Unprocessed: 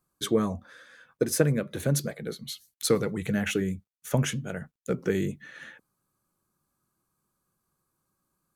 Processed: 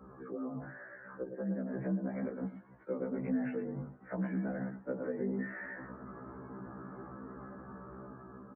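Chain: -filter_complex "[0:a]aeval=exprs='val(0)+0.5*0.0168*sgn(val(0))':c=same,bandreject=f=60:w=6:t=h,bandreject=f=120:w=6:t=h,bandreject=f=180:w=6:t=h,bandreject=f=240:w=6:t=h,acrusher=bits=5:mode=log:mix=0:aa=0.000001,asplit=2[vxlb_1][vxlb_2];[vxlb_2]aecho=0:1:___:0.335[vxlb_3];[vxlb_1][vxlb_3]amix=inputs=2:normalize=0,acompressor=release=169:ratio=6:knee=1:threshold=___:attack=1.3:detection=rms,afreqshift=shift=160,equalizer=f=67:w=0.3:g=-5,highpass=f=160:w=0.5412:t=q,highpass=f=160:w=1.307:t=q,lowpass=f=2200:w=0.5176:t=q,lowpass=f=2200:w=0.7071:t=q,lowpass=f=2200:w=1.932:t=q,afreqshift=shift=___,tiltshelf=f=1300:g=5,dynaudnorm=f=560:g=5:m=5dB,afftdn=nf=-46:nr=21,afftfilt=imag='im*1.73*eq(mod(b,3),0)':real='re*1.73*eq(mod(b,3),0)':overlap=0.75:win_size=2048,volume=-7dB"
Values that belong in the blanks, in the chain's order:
109, -29dB, -110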